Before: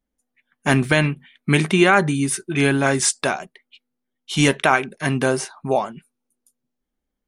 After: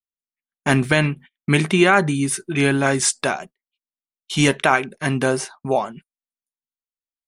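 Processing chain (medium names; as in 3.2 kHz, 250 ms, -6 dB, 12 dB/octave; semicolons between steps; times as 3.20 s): gate -38 dBFS, range -31 dB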